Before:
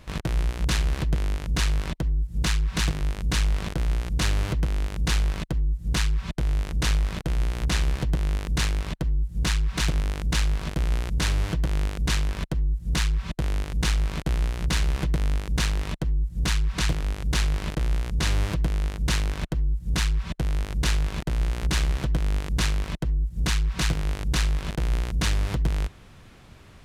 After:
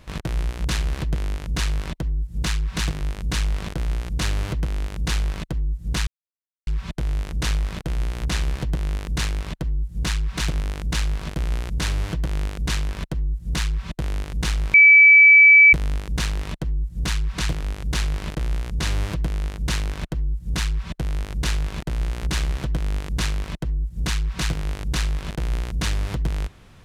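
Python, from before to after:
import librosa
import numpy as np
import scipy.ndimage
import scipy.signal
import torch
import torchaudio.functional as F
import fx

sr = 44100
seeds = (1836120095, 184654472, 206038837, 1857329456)

y = fx.edit(x, sr, fx.insert_silence(at_s=6.07, length_s=0.6),
    fx.bleep(start_s=14.14, length_s=0.99, hz=2300.0, db=-7.0), tone=tone)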